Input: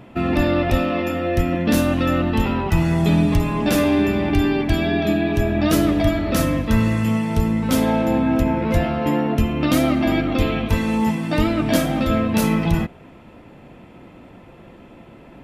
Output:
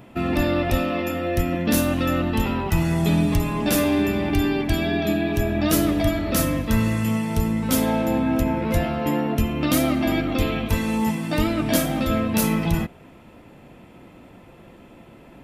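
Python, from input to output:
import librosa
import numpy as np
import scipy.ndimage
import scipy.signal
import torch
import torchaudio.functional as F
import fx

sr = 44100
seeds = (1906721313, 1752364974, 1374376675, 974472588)

y = fx.high_shelf(x, sr, hz=7000.0, db=10.5)
y = F.gain(torch.from_numpy(y), -3.0).numpy()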